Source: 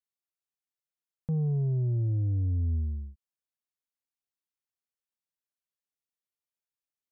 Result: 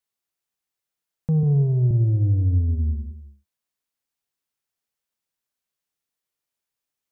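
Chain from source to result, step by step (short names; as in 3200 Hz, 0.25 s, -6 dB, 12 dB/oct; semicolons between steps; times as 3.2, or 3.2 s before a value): 1.43–1.91 HPF 73 Hz 24 dB/oct; non-linear reverb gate 0.31 s flat, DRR 10 dB; gain +7.5 dB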